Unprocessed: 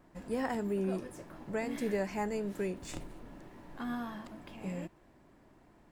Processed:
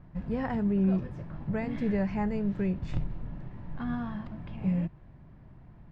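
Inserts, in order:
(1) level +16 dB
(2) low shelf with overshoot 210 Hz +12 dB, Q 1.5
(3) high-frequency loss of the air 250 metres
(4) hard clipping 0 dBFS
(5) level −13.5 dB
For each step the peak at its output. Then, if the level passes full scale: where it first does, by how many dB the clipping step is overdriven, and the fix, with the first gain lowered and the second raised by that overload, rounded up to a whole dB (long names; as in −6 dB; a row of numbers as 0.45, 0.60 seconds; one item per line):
−5.5, −3.5, −4.0, −4.0, −17.5 dBFS
no step passes full scale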